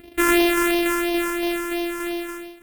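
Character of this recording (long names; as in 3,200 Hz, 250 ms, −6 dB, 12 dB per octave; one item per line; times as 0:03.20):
a buzz of ramps at a fixed pitch in blocks of 128 samples
phaser sweep stages 4, 2.9 Hz, lowest notch 650–1,300 Hz
tremolo saw down 3.5 Hz, depth 30%
AAC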